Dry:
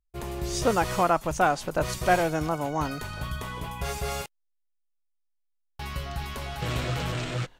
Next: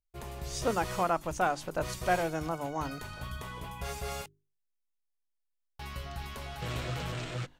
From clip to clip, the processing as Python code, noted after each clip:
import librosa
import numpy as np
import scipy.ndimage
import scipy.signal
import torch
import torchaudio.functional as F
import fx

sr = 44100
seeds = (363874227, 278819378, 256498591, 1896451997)

y = fx.hum_notches(x, sr, base_hz=50, count=8)
y = y * librosa.db_to_amplitude(-6.0)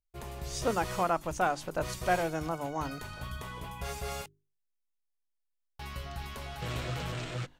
y = x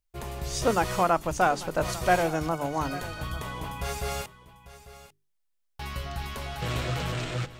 y = x + 10.0 ** (-16.5 / 20.0) * np.pad(x, (int(846 * sr / 1000.0), 0))[:len(x)]
y = y * librosa.db_to_amplitude(5.5)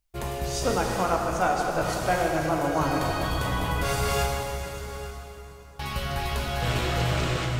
y = fx.rider(x, sr, range_db=4, speed_s=0.5)
y = fx.rev_plate(y, sr, seeds[0], rt60_s=4.1, hf_ratio=0.75, predelay_ms=0, drr_db=-0.5)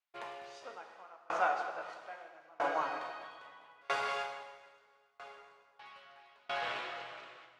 y = fx.bandpass_edges(x, sr, low_hz=730.0, high_hz=2900.0)
y = fx.tremolo_decay(y, sr, direction='decaying', hz=0.77, depth_db=31)